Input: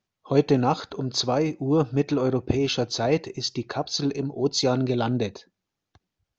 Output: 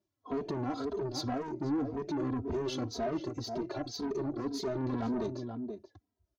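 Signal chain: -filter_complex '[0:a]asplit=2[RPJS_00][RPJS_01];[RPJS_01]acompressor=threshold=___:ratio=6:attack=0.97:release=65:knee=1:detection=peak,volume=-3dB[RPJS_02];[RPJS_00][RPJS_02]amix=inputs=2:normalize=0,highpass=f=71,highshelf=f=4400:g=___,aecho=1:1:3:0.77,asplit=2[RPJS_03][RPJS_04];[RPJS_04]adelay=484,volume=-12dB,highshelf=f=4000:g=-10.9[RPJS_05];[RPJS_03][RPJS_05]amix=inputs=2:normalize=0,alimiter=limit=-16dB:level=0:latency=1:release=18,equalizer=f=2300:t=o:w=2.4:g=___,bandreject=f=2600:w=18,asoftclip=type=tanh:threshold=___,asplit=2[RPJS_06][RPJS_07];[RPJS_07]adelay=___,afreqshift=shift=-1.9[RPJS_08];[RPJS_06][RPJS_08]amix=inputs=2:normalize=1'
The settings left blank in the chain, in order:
-32dB, -9, -13.5, -26.5dB, 2.9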